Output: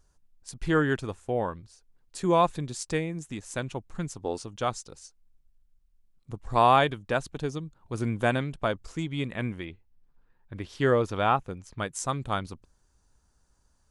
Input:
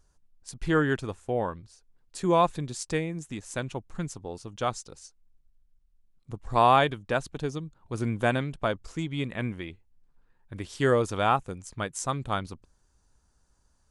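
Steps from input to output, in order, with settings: 4.23–4.45 spectral gain 220–9900 Hz +7 dB; 9.65–11.78 bell 8500 Hz -11 dB 1 oct

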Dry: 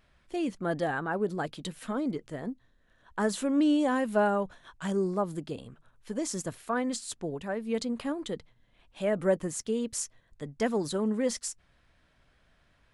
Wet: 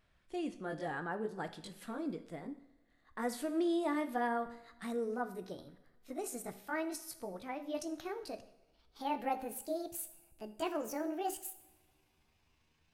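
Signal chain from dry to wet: gliding pitch shift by +8 st starting unshifted; two-slope reverb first 0.68 s, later 2.2 s, from -21 dB, DRR 9 dB; gain -7.5 dB

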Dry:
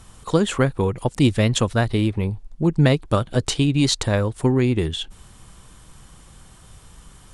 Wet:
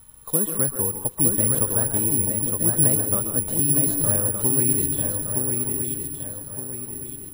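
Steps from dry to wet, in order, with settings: de-esser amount 80%; high shelf 2600 Hz -8 dB; swung echo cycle 1.216 s, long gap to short 3:1, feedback 39%, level -4 dB; on a send at -8.5 dB: reverb RT60 0.35 s, pre-delay 0.123 s; on the sum: careless resampling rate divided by 4×, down none, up zero stuff; gain -9.5 dB

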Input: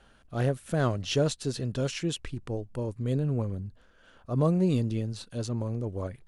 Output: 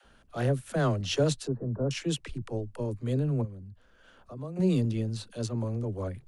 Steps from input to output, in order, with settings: 1.47–1.91 inverse Chebyshev low-pass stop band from 2900 Hz, stop band 50 dB; 3.41–4.56 compressor 2:1, threshold -48 dBFS, peak gain reduction 15 dB; dispersion lows, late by 47 ms, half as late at 310 Hz

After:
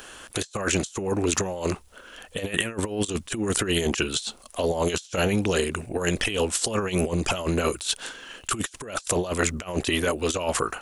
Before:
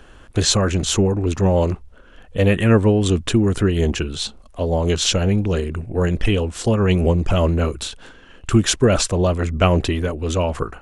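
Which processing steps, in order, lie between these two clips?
RIAA curve recording; negative-ratio compressor -25 dBFS, ratio -0.5; gain -1 dB

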